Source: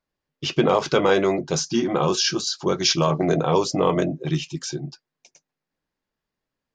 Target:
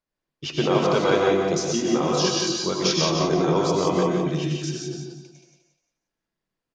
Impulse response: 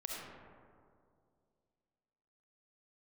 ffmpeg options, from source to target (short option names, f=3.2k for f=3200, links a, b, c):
-filter_complex "[0:a]aecho=1:1:176|352|528|704:0.501|0.16|0.0513|0.0164[a];[1:a]atrim=start_sample=2205,afade=t=out:st=0.15:d=0.01,atrim=end_sample=7056,asetrate=23373,aresample=44100[b];[a][b]afir=irnorm=-1:irlink=0,volume=-4dB"